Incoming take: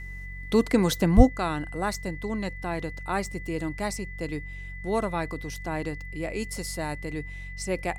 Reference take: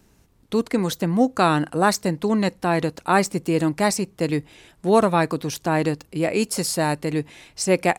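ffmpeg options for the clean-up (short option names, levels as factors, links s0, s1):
-filter_complex "[0:a]bandreject=f=46.2:t=h:w=4,bandreject=f=92.4:t=h:w=4,bandreject=f=138.6:t=h:w=4,bandreject=f=184.8:t=h:w=4,bandreject=f=2000:w=30,asplit=3[s0][s1][s2];[s0]afade=t=out:st=1.16:d=0.02[s3];[s1]highpass=f=140:w=0.5412,highpass=f=140:w=1.3066,afade=t=in:st=1.16:d=0.02,afade=t=out:st=1.28:d=0.02[s4];[s2]afade=t=in:st=1.28:d=0.02[s5];[s3][s4][s5]amix=inputs=3:normalize=0,asetnsamples=n=441:p=0,asendcmd='1.29 volume volume 10.5dB',volume=1"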